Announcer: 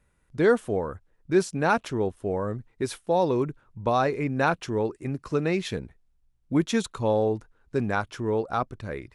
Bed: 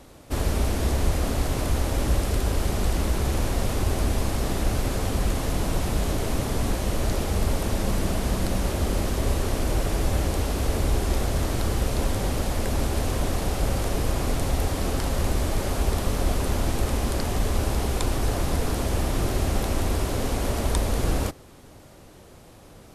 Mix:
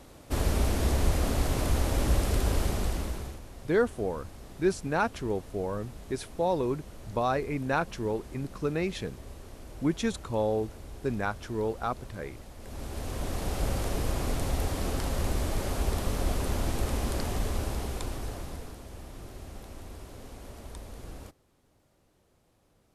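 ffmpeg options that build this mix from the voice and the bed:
ffmpeg -i stem1.wav -i stem2.wav -filter_complex "[0:a]adelay=3300,volume=-4.5dB[link_01];[1:a]volume=13.5dB,afade=type=out:start_time=2.56:duration=0.84:silence=0.11885,afade=type=in:start_time=12.58:duration=1.03:silence=0.158489,afade=type=out:start_time=17.22:duration=1.57:silence=0.188365[link_02];[link_01][link_02]amix=inputs=2:normalize=0" out.wav

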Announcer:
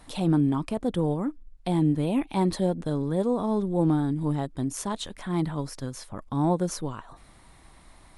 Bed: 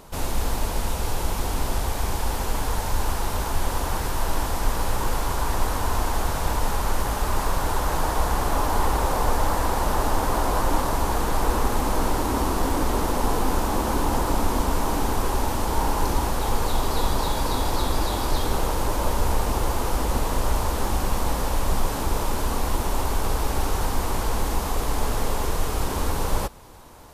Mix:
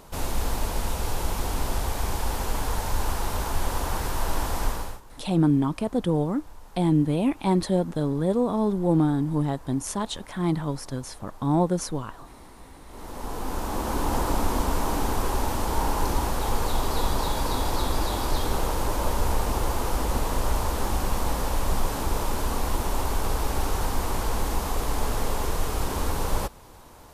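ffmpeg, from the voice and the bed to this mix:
ffmpeg -i stem1.wav -i stem2.wav -filter_complex "[0:a]adelay=5100,volume=2dB[link_01];[1:a]volume=21.5dB,afade=type=out:start_time=4.63:duration=0.38:silence=0.0668344,afade=type=in:start_time=12.87:duration=1.32:silence=0.0668344[link_02];[link_01][link_02]amix=inputs=2:normalize=0" out.wav

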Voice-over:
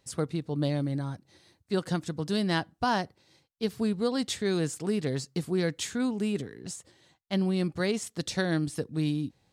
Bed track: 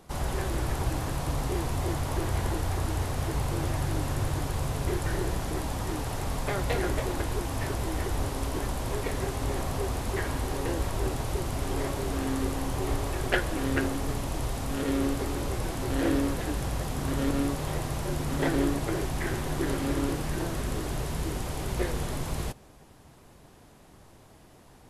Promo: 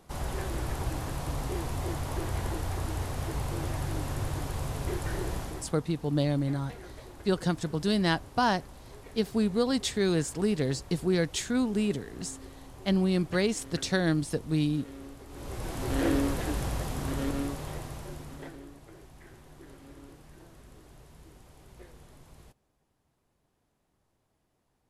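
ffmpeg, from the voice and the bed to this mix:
ffmpeg -i stem1.wav -i stem2.wav -filter_complex "[0:a]adelay=5550,volume=1.5dB[link_01];[1:a]volume=13.5dB,afade=type=out:start_time=5.38:duration=0.36:silence=0.199526,afade=type=in:start_time=15.28:duration=0.67:silence=0.141254,afade=type=out:start_time=16.59:duration=2.01:silence=0.0891251[link_02];[link_01][link_02]amix=inputs=2:normalize=0" out.wav

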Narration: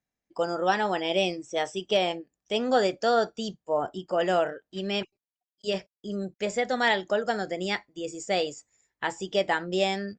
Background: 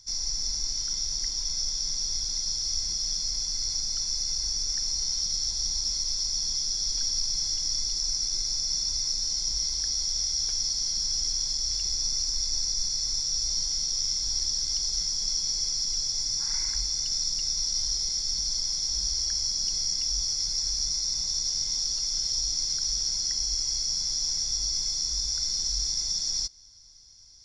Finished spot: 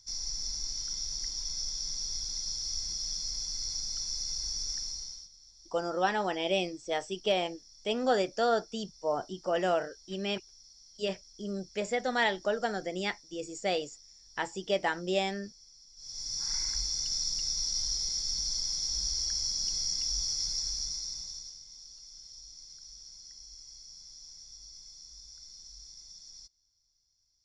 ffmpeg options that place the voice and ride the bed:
ffmpeg -i stem1.wav -i stem2.wav -filter_complex "[0:a]adelay=5350,volume=-4dB[link_01];[1:a]volume=18dB,afade=type=out:start_time=4.71:duration=0.59:silence=0.0794328,afade=type=in:start_time=15.96:duration=0.54:silence=0.0630957,afade=type=out:start_time=20.47:duration=1.13:silence=0.133352[link_02];[link_01][link_02]amix=inputs=2:normalize=0" out.wav

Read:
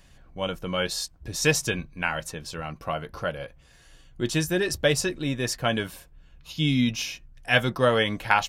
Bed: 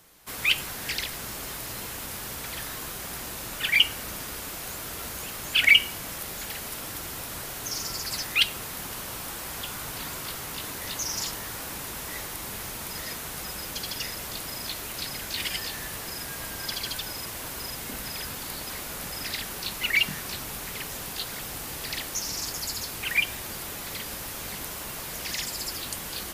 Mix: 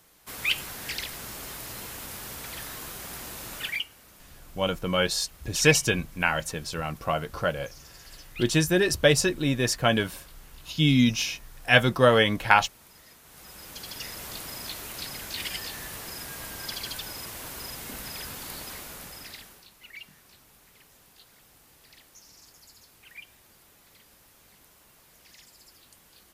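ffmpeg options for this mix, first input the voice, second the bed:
ffmpeg -i stem1.wav -i stem2.wav -filter_complex "[0:a]adelay=4200,volume=2.5dB[link_01];[1:a]volume=12dB,afade=type=out:start_time=3.58:duration=0.27:silence=0.177828,afade=type=in:start_time=13.23:duration=1.04:silence=0.177828,afade=type=out:start_time=18.59:duration=1.08:silence=0.11885[link_02];[link_01][link_02]amix=inputs=2:normalize=0" out.wav

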